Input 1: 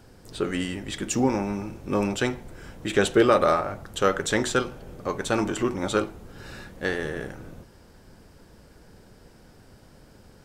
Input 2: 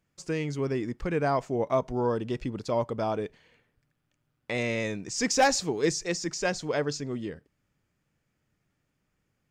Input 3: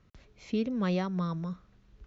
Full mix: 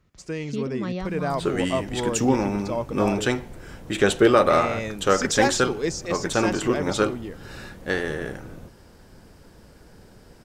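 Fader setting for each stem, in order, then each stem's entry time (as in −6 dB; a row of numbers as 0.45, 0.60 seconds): +2.0, −0.5, −1.0 decibels; 1.05, 0.00, 0.00 seconds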